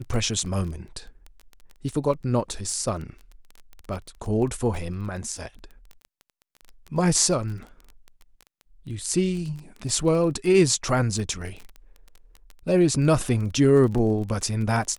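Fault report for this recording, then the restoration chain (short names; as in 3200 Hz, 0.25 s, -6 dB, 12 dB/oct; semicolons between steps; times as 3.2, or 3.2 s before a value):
crackle 20/s -31 dBFS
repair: de-click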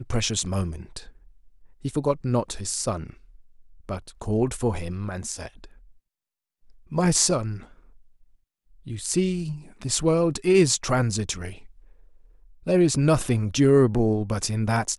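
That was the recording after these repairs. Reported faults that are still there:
none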